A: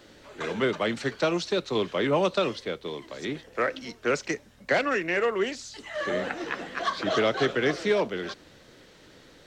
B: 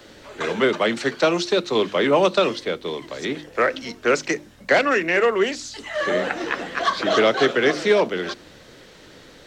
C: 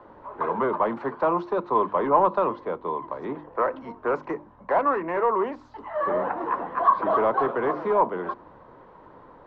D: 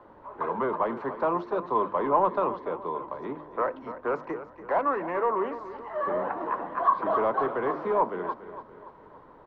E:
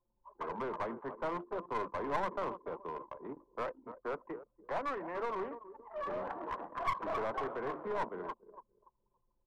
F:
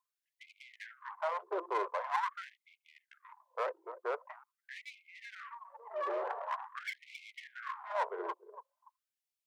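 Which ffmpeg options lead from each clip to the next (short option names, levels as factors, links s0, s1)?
-filter_complex "[0:a]bandreject=f=50:t=h:w=6,bandreject=f=100:t=h:w=6,bandreject=f=150:t=h:w=6,bandreject=f=200:t=h:w=6,bandreject=f=250:t=h:w=6,bandreject=f=300:t=h:w=6,bandreject=f=350:t=h:w=6,acrossover=split=170|1400[s0][s1][s2];[s0]acompressor=threshold=0.00251:ratio=6[s3];[s3][s1][s2]amix=inputs=3:normalize=0,volume=2.24"
-af "asoftclip=type=tanh:threshold=0.178,lowpass=f=1000:t=q:w=7.2,volume=0.562"
-af "aecho=1:1:287|574|861|1148|1435:0.224|0.105|0.0495|0.0232|0.0109,volume=0.668"
-af "aeval=exprs='clip(val(0),-1,0.0447)':c=same,anlmdn=3.98,volume=0.355"
-af "afftfilt=real='re*gte(b*sr/1024,320*pow(2100/320,0.5+0.5*sin(2*PI*0.45*pts/sr)))':imag='im*gte(b*sr/1024,320*pow(2100/320,0.5+0.5*sin(2*PI*0.45*pts/sr)))':win_size=1024:overlap=0.75,volume=1.41"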